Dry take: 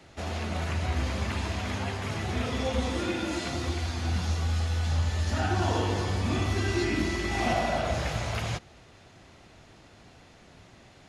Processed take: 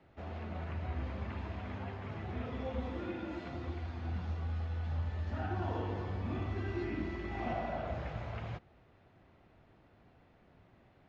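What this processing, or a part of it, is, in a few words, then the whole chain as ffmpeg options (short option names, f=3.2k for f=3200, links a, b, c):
phone in a pocket: -af "lowpass=3k,highshelf=f=2.2k:g=-8.5,volume=-9dB"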